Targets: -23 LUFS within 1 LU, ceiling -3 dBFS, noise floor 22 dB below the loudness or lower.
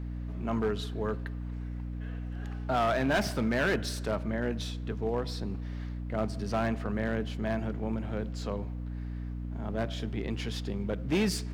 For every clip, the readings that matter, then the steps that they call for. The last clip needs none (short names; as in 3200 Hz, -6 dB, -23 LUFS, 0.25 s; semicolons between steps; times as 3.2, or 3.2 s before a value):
clipped 1.2%; flat tops at -22.0 dBFS; hum 60 Hz; harmonics up to 300 Hz; hum level -34 dBFS; loudness -33.0 LUFS; peak -22.0 dBFS; loudness target -23.0 LUFS
-> clip repair -22 dBFS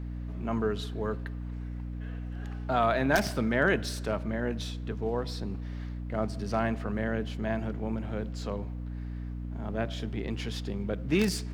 clipped 0.0%; hum 60 Hz; harmonics up to 300 Hz; hum level -34 dBFS
-> de-hum 60 Hz, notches 5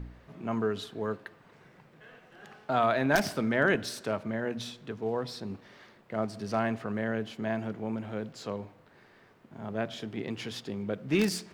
hum none; loudness -32.0 LUFS; peak -12.5 dBFS; loudness target -23.0 LUFS
-> gain +9 dB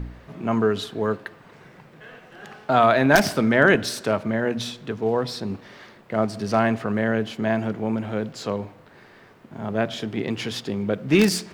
loudness -23.0 LUFS; peak -3.5 dBFS; noise floor -50 dBFS